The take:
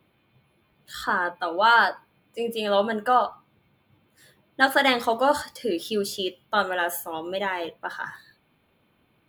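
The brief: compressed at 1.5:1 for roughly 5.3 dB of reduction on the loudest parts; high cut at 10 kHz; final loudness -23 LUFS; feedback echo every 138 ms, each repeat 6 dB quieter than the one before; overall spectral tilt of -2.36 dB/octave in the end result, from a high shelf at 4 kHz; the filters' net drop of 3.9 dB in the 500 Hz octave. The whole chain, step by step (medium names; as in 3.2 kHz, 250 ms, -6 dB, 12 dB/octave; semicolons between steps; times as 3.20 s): low-pass 10 kHz; peaking EQ 500 Hz -5 dB; treble shelf 4 kHz +4 dB; compression 1.5:1, threshold -28 dBFS; feedback delay 138 ms, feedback 50%, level -6 dB; trim +4.5 dB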